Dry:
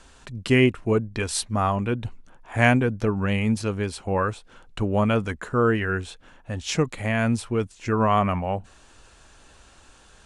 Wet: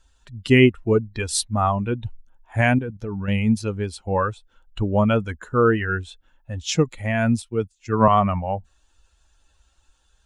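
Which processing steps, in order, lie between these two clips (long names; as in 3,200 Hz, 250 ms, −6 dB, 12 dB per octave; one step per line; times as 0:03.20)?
spectral dynamics exaggerated over time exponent 1.5
0:02.61–0:03.28: output level in coarse steps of 11 dB
0:07.42–0:08.08: multiband upward and downward expander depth 100%
level +5 dB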